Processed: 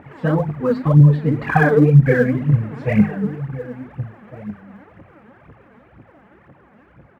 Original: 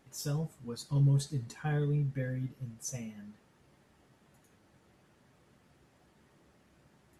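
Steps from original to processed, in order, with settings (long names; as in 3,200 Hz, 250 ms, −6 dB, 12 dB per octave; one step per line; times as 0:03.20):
source passing by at 0:01.96, 25 m/s, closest 25 metres
downward compressor 2.5 to 1, threshold −39 dBFS, peak gain reduction 9 dB
inverse Chebyshev low-pass filter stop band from 5,600 Hz, stop band 50 dB
mains-hum notches 50/100/150/200/250/300/350/400/450 Hz
double-tracking delay 20 ms −6.5 dB
slap from a distant wall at 250 metres, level −15 dB
phase shifter 2 Hz, delay 4.9 ms, feedback 70%
high-pass filter 65 Hz
boost into a limiter +27.5 dB
level −1 dB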